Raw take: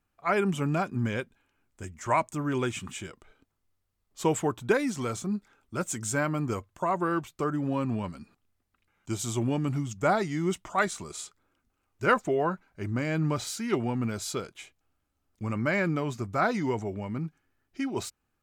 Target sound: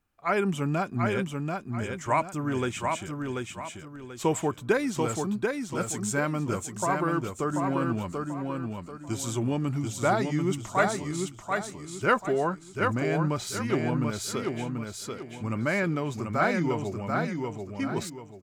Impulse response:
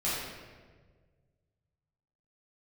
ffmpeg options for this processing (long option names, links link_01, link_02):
-af "aecho=1:1:737|1474|2211|2948:0.631|0.208|0.0687|0.0227"